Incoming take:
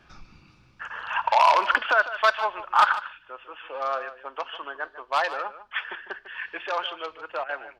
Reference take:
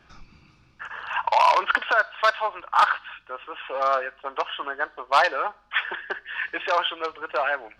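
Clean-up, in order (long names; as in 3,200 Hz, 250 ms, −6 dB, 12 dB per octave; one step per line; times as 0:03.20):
repair the gap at 0:07.44, 48 ms
echo removal 150 ms −13.5 dB
level correction +5.5 dB, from 0:02.93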